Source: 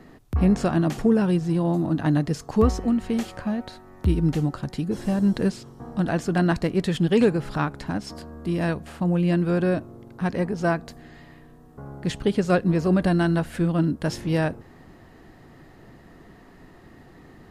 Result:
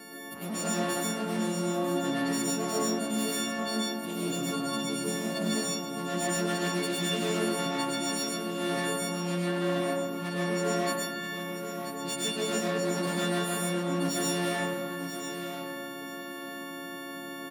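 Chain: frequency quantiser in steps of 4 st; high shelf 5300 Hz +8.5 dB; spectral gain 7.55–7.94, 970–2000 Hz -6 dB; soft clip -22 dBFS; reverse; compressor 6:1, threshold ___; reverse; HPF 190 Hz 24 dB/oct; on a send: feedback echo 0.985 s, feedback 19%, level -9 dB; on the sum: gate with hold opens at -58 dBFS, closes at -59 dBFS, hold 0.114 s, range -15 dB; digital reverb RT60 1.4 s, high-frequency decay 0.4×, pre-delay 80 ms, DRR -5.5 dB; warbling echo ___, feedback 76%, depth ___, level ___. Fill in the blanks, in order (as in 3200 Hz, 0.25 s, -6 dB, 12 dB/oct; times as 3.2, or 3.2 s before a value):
-34 dBFS, 0.223 s, 62 cents, -24 dB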